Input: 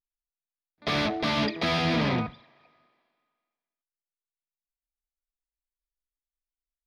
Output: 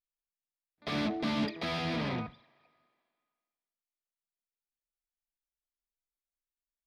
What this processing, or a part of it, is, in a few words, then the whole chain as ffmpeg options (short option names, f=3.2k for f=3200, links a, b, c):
saturation between pre-emphasis and de-emphasis: -filter_complex "[0:a]asettb=1/sr,asplit=3[a][b][c];[a]atrim=end=0.914[d];[b]atrim=start=0.91:end=1.45,asetpts=PTS-STARTPTS,afade=t=in:d=0.004:c=qsin,afade=t=out:st=0.536:d=0.004:c=qsin,equalizer=f=240:t=o:w=0.93:g=9.5[e];[c]atrim=start=1.446[f];[d][e]acrossfade=d=0.004:c1=hsin:c2=qsin[g];[g][f]acrossfade=d=0.004:c1=qsin:c2=hsin,highshelf=f=3.2k:g=9,asoftclip=type=tanh:threshold=-15dB,highshelf=f=3.2k:g=-9,volume=-7.5dB"